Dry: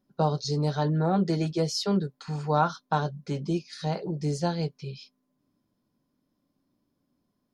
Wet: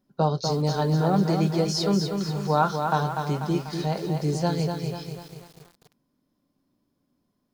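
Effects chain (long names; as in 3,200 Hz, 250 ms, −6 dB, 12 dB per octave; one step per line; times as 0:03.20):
feedback echo at a low word length 245 ms, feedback 55%, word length 8 bits, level −5.5 dB
level +2 dB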